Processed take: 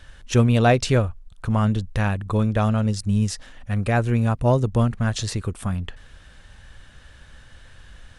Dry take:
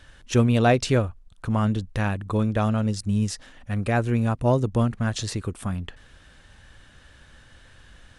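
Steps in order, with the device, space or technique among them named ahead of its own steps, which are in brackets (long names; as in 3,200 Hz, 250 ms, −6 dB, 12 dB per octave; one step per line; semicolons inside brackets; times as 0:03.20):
low shelf boost with a cut just above (low-shelf EQ 64 Hz +6 dB; parametric band 300 Hz −3.5 dB 0.61 octaves)
level +2 dB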